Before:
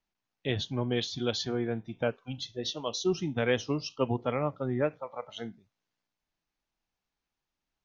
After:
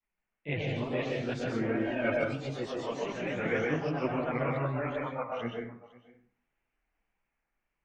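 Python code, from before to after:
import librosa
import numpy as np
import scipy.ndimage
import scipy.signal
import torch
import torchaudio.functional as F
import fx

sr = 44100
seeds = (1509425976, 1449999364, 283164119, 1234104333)

y = fx.rider(x, sr, range_db=4, speed_s=0.5)
y = fx.high_shelf_res(y, sr, hz=2900.0, db=-9.0, q=3.0)
y = fx.chorus_voices(y, sr, voices=4, hz=0.71, base_ms=25, depth_ms=4.4, mix_pct=65)
y = y + 10.0 ** (-21.0 / 20.0) * np.pad(y, (int(507 * sr / 1000.0), 0))[:len(y)]
y = fx.wow_flutter(y, sr, seeds[0], rate_hz=2.1, depth_cents=120.0)
y = fx.echo_pitch(y, sr, ms=139, semitones=2, count=3, db_per_echo=-6.0)
y = fx.comb(y, sr, ms=3.2, depth=0.74, at=(1.69, 2.18))
y = fx.rev_plate(y, sr, seeds[1], rt60_s=0.53, hf_ratio=0.55, predelay_ms=115, drr_db=0.0)
y = y * 10.0 ** (-1.5 / 20.0)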